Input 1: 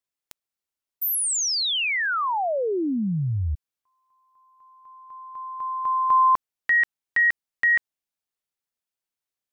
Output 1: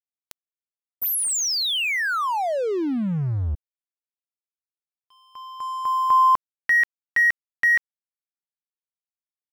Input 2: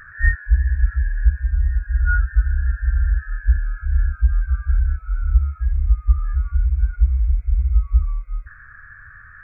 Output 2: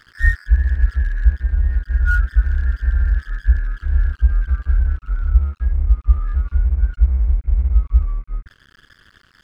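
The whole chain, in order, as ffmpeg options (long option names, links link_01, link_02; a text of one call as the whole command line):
ffmpeg -i in.wav -af "aeval=exprs='sgn(val(0))*max(abs(val(0))-0.01,0)':channel_layout=same,volume=2dB" out.wav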